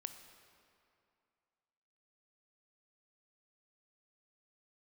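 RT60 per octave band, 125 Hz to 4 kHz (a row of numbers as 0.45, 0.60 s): 2.3, 2.4, 2.4, 2.6, 2.2, 1.8 s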